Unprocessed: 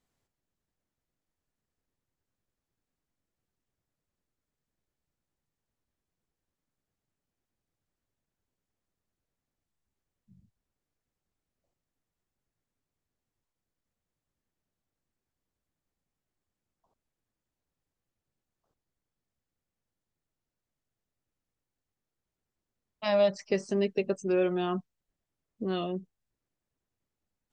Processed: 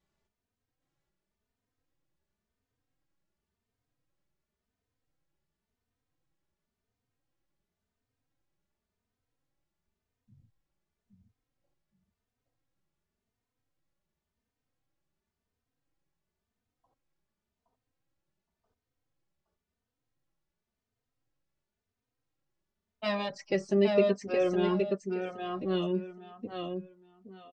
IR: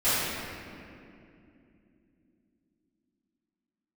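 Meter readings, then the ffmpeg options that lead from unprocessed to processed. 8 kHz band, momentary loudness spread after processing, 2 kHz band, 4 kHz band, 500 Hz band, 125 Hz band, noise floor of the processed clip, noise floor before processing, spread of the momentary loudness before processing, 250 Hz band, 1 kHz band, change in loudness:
can't be measured, 14 LU, +1.5 dB, +0.5 dB, +0.5 dB, +2.0 dB, below −85 dBFS, below −85 dBFS, 11 LU, +1.5 dB, 0.0 dB, −0.5 dB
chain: -filter_complex "[0:a]adynamicsmooth=sensitivity=1.5:basefreq=7000,aecho=1:1:818|1636|2454:0.631|0.12|0.0228,asplit=2[link_01][link_02];[link_02]adelay=3.1,afreqshift=0.93[link_03];[link_01][link_03]amix=inputs=2:normalize=1,volume=3.5dB"

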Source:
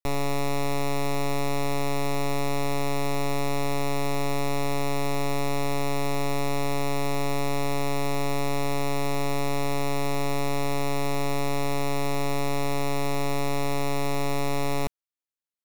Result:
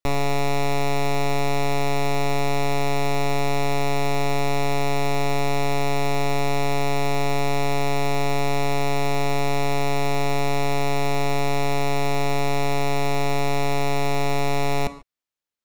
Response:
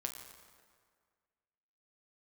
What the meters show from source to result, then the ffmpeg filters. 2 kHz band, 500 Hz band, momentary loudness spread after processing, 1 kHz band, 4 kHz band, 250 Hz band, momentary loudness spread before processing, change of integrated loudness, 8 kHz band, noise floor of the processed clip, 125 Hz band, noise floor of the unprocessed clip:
+5.5 dB, +4.5 dB, 0 LU, +5.5 dB, +4.5 dB, +1.5 dB, 0 LU, +4.0 dB, +2.0 dB, −37 dBFS, +4.5 dB, below −85 dBFS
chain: -filter_complex "[0:a]asplit=2[link_01][link_02];[1:a]atrim=start_sample=2205,afade=type=out:start_time=0.2:duration=0.01,atrim=end_sample=9261,lowpass=7600[link_03];[link_02][link_03]afir=irnorm=-1:irlink=0,volume=0dB[link_04];[link_01][link_04]amix=inputs=2:normalize=0"

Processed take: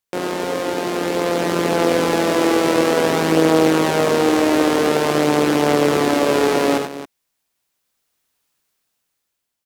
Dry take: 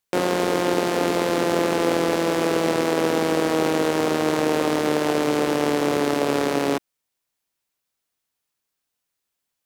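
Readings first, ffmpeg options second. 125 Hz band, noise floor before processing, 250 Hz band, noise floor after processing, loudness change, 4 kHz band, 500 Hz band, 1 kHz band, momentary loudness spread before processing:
+4.5 dB, −81 dBFS, +4.5 dB, −76 dBFS, +4.5 dB, +4.5 dB, +4.5 dB, +4.0 dB, 1 LU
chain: -filter_complex "[0:a]dynaudnorm=framelen=410:gausssize=7:maxgain=16dB,asplit=2[link_01][link_02];[link_02]aecho=0:1:75|94|273:0.398|0.398|0.224[link_03];[link_01][link_03]amix=inputs=2:normalize=0,volume=-2.5dB"

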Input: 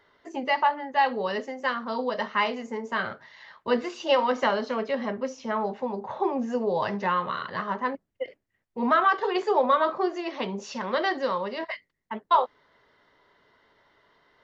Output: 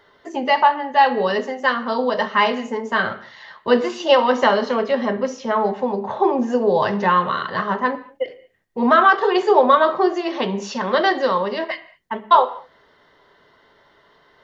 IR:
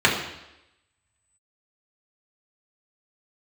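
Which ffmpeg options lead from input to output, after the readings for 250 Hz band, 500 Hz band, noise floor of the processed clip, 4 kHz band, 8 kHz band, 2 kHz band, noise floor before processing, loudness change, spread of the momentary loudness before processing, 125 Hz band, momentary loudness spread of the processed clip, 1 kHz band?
+8.0 dB, +8.5 dB, −56 dBFS, +8.0 dB, can't be measured, +8.0 dB, −77 dBFS, +8.5 dB, 12 LU, +8.5 dB, 13 LU, +8.0 dB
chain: -filter_complex "[0:a]asplit=2[link_01][link_02];[1:a]atrim=start_sample=2205,afade=type=out:start_time=0.28:duration=0.01,atrim=end_sample=12789[link_03];[link_02][link_03]afir=irnorm=-1:irlink=0,volume=-28.5dB[link_04];[link_01][link_04]amix=inputs=2:normalize=0,volume=7dB"

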